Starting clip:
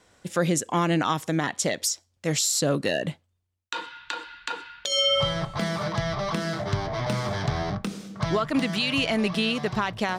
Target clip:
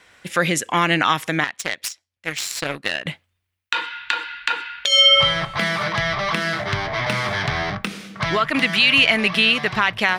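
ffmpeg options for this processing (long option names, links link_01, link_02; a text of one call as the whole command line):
ffmpeg -i in.wav -filter_complex "[0:a]aexciter=amount=1.6:drive=7.1:freq=9800,asettb=1/sr,asplit=3[link_01][link_02][link_03];[link_01]atrim=end=1.444[link_04];[link_02]atrim=start=1.44:end=3.06,asetpts=PTS-STARTPTS,afade=type=in:duration=0.004:curve=qsin,afade=type=out:start_time=1.616:duration=0.004:curve=qsin,aeval=exprs='0.251*(cos(1*acos(clip(val(0)/0.251,-1,1)))-cos(1*PI/2))+0.0708*(cos(3*acos(clip(val(0)/0.251,-1,1)))-cos(3*PI/2))':channel_layout=same[link_05];[link_03]atrim=start=3.056[link_06];[link_04][link_05]acrossfade=duration=0.004:curve1=hsin:curve2=qsin[link_07];[link_07][link_06]acrossfade=duration=0.004:curve1=qsin:curve2=hsin,equalizer=frequency=2200:width=0.69:gain=14.5" out.wav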